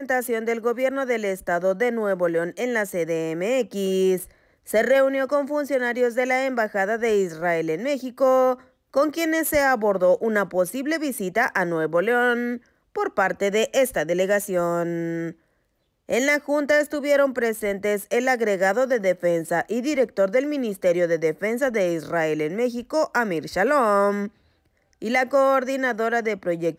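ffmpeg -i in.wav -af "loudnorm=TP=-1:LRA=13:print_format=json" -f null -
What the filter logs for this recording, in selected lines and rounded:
"input_i" : "-22.5",
"input_tp" : "-10.1",
"input_lra" : "2.0",
"input_thresh" : "-32.8",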